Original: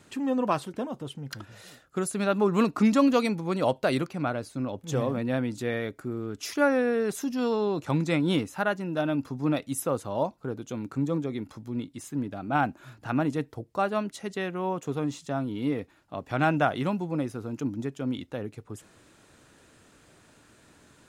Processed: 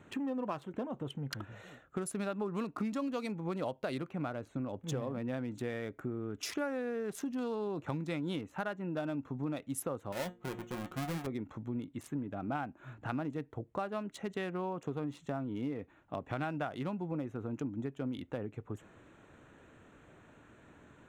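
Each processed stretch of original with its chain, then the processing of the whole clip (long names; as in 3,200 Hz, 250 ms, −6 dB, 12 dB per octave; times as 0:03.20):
0:10.12–0:11.27: each half-wave held at its own peak + tuned comb filter 180 Hz, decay 0.17 s, mix 80% + hum removal 116.6 Hz, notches 4
whole clip: adaptive Wiener filter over 9 samples; downward compressor 6 to 1, threshold −34 dBFS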